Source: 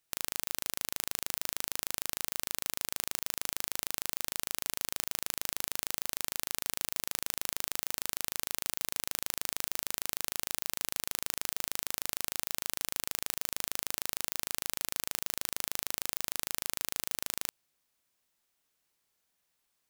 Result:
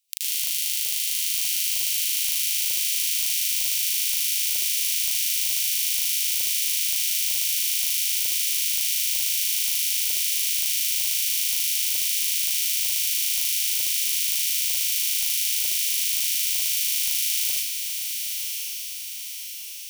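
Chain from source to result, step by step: steep high-pass 2.5 kHz 36 dB/octave; echo that smears into a reverb 1068 ms, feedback 53%, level -5 dB; reverberation RT60 0.75 s, pre-delay 80 ms, DRR -8.5 dB; trim +5 dB

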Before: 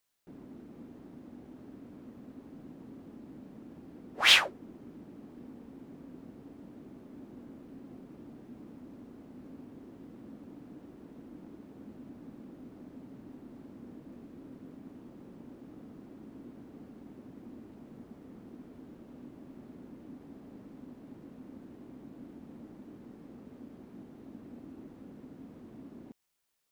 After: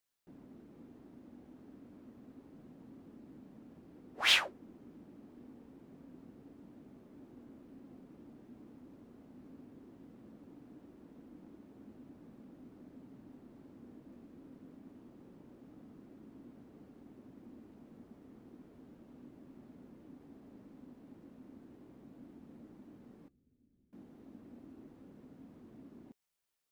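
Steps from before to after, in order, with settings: 23.28–23.93 s: amplifier tone stack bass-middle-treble 10-0-1; flange 0.31 Hz, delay 0.4 ms, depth 3.8 ms, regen -84%; trim -1.5 dB

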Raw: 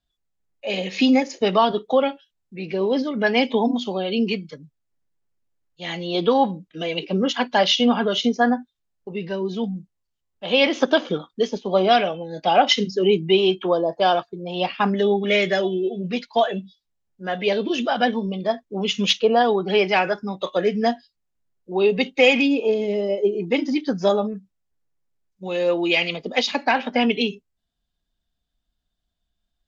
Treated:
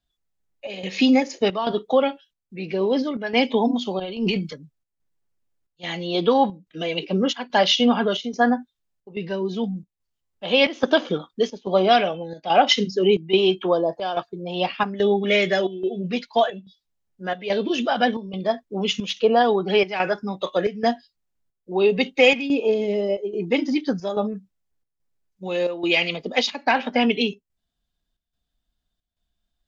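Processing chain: square tremolo 1.2 Hz, depth 65%, duty 80%; 3.99–4.53 s: transient shaper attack -11 dB, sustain +8 dB

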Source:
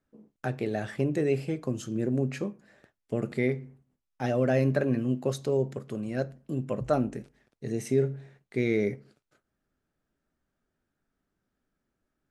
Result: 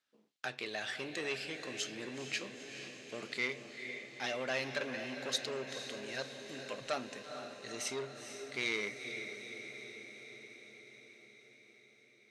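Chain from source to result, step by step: band-pass filter 3.8 kHz, Q 1.5; echo that smears into a reverb 464 ms, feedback 67%, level -9 dB; transformer saturation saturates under 2.1 kHz; trim +10 dB

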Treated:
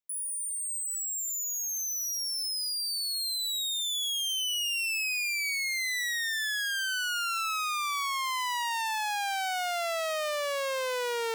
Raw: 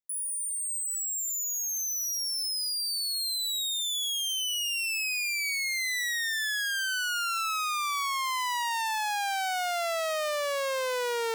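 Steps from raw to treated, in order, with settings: peaking EQ 2.8 kHz +2 dB; trim -1.5 dB

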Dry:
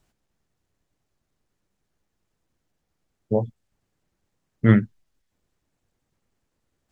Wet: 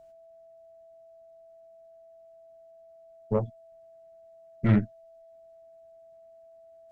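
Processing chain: valve stage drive 14 dB, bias 0.7; whistle 660 Hz -51 dBFS

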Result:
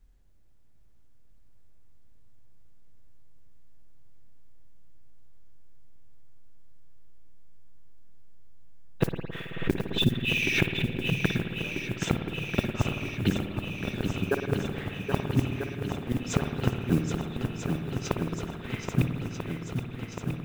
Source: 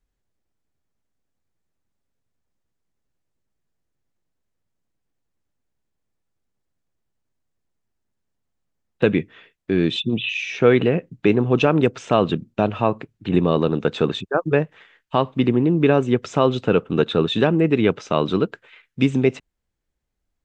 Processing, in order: inverted gate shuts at -12 dBFS, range -38 dB; compression 4:1, threshold -32 dBFS, peak gain reduction 12.5 dB; modulation noise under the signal 21 dB; bass shelf 180 Hz +11 dB; shuffle delay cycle 1291 ms, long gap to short 1.5:1, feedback 68%, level -7 dB; spring tank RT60 2 s, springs 54 ms, chirp 30 ms, DRR 5 dB; 9.04–11.24 s: swell ahead of each attack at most 86 dB/s; trim +5.5 dB

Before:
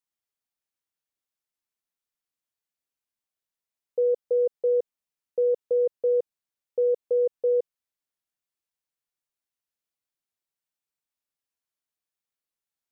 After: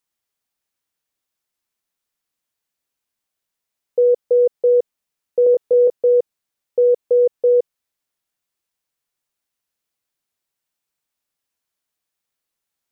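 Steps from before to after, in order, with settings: 5.44–5.94 s: doubling 24 ms -2 dB; trim +8.5 dB

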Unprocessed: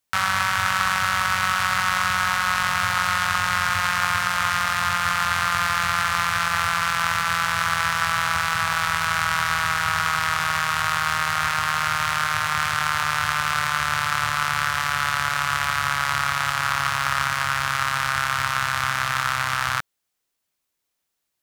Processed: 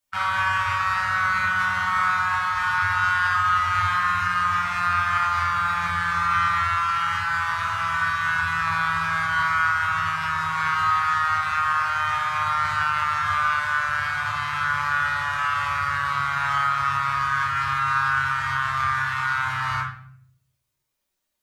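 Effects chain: spectral contrast enhancement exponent 1.6; simulated room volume 99 m³, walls mixed, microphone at 1.3 m; trim -5.5 dB

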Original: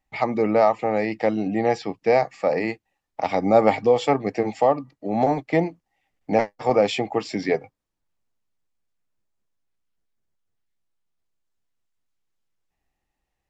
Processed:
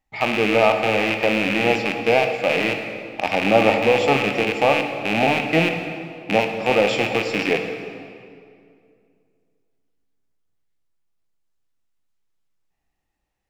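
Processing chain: rattle on loud lows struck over -37 dBFS, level -11 dBFS; on a send: reverberation RT60 2.3 s, pre-delay 15 ms, DRR 4.5 dB

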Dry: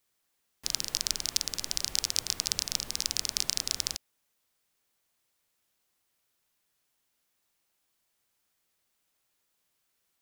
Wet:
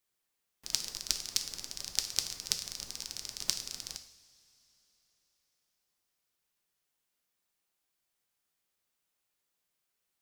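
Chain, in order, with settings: level held to a coarse grid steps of 14 dB; two-slope reverb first 0.6 s, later 4 s, from -20 dB, DRR 6.5 dB

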